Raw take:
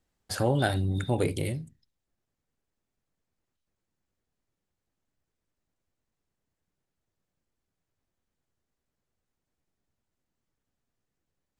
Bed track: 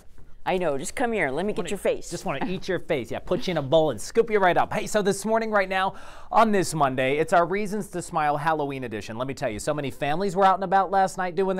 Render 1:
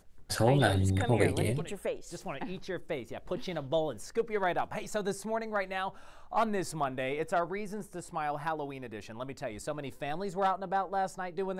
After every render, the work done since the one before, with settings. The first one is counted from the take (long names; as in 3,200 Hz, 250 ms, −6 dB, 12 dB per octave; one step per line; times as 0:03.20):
mix in bed track −10.5 dB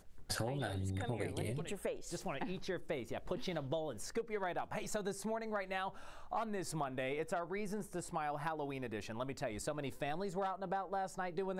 downward compressor 10 to 1, threshold −35 dBFS, peak gain reduction 16 dB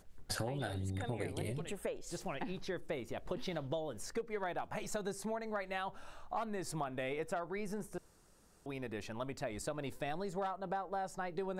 0:07.98–0:08.66: fill with room tone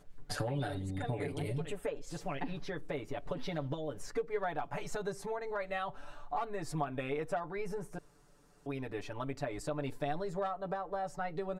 high-shelf EQ 4,700 Hz −8 dB
comb filter 6.9 ms, depth 92%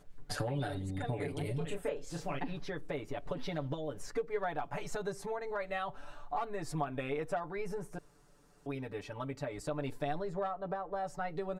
0:01.58–0:02.39: double-tracking delay 30 ms −5 dB
0:08.75–0:09.67: notch comb filter 350 Hz
0:10.18–0:10.95: high-shelf EQ 5,400 Hz → 3,300 Hz −10 dB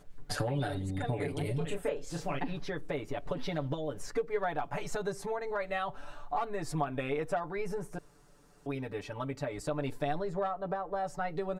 level +3 dB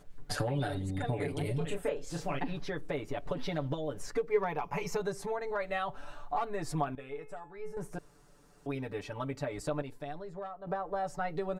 0:04.31–0:05.00: EQ curve with evenly spaced ripples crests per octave 0.81, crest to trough 10 dB
0:06.95–0:07.77: tuned comb filter 430 Hz, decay 0.38 s, mix 80%
0:09.82–0:10.67: clip gain −8.5 dB